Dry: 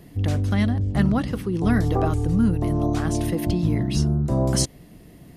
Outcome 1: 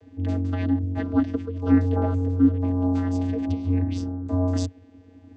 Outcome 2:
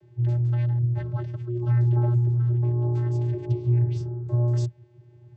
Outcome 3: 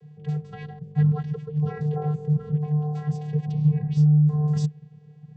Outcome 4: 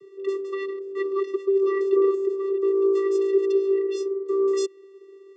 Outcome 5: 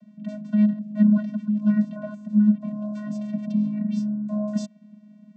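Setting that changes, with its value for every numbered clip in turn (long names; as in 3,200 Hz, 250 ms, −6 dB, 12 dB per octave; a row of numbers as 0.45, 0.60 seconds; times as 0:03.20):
channel vocoder, frequency: 91, 120, 150, 390, 210 Hertz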